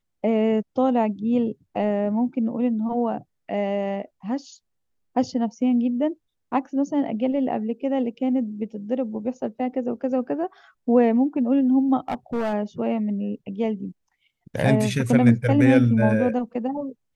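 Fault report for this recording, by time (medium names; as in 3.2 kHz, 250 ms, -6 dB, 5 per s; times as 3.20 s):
12.08–12.54 s: clipped -21 dBFS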